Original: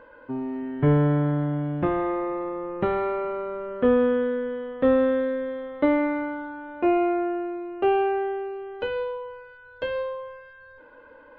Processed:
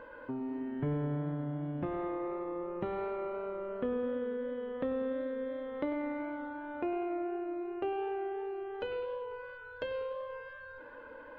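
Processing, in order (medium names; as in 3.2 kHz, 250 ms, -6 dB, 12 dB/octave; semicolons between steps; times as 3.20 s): dynamic bell 1.5 kHz, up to -3 dB, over -43 dBFS, Q 1.2; compression 2.5:1, threshold -39 dBFS, peak gain reduction 15.5 dB; modulated delay 98 ms, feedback 66%, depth 166 cents, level -15 dB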